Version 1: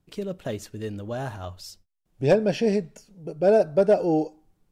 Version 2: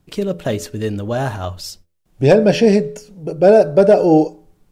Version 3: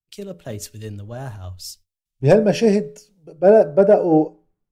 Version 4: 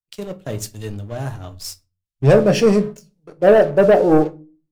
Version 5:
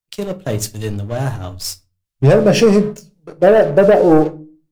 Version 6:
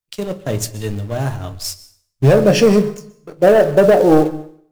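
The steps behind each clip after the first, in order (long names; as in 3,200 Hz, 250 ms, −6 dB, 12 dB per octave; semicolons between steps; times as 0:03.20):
hum removal 84.3 Hz, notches 7; boost into a limiter +12 dB; level −1 dB
dynamic equaliser 3,700 Hz, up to −7 dB, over −38 dBFS, Q 1.1; multiband upward and downward expander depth 100%; level −4.5 dB
leveller curve on the samples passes 2; rectangular room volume 130 cubic metres, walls furnished, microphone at 0.45 metres; level −4 dB
downward compressor, threshold −13 dBFS, peak gain reduction 6.5 dB; level +6.5 dB
in parallel at −5 dB: floating-point word with a short mantissa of 2 bits; on the sum: dense smooth reverb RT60 0.59 s, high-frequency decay 0.85×, pre-delay 110 ms, DRR 17.5 dB; level −4.5 dB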